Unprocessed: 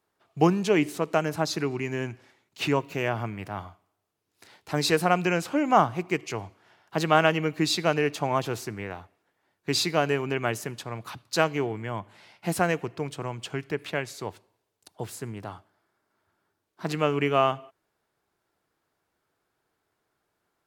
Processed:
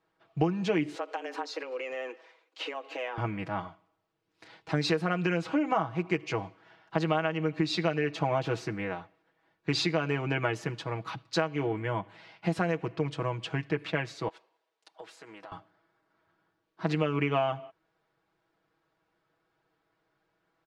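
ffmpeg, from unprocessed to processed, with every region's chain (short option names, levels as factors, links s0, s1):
-filter_complex "[0:a]asettb=1/sr,asplit=3[s0][s1][s2];[s0]atrim=end=0.954[s3];[s1]atrim=start=0.95:end=3.18,asetpts=PTS-STARTPTS,afade=t=in:d=0.004:c=qsin,afade=t=out:st=2.226:d=0.004:c=qsin,highpass=240,afreqshift=130,acompressor=threshold=0.0224:ratio=6:attack=3.2:release=140:knee=1:detection=peak[s4];[s2]atrim=start=3.176[s5];[s3][s4]acrossfade=d=0.004:c1=hsin:c2=qsin[s6];[s6][s5]acrossfade=d=0.004:c1=qsin:c2=hsin,asettb=1/sr,asplit=3[s7][s8][s9];[s7]atrim=end=14.284[s10];[s8]atrim=start=14.28:end=15.52,asetpts=PTS-STARTPTS,afade=t=in:d=0.004:c=qsin,afade=t=out:st=1.236:d=0.004:c=qsin,highpass=520,acompressor=threshold=0.00631:ratio=4:attack=3.2:release=140:knee=1:detection=peak[s11];[s9]atrim=start=15.516[s12];[s10][s11]acrossfade=d=0.004:c1=hsin:c2=qsin[s13];[s13][s12]acrossfade=d=0.004:c1=qsin:c2=hsin,lowpass=3900,aecho=1:1:6.2:0.72,acompressor=threshold=0.0708:ratio=12"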